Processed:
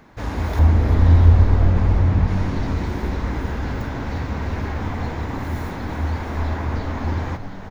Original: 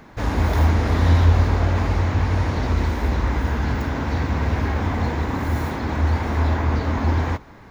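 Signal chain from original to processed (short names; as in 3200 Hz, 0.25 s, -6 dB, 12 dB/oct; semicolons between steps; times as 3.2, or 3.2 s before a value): 0.59–2.28 tilt -2 dB/oct; on a send: frequency-shifting echo 0.354 s, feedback 59%, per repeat -90 Hz, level -9.5 dB; on the sum: gain -4 dB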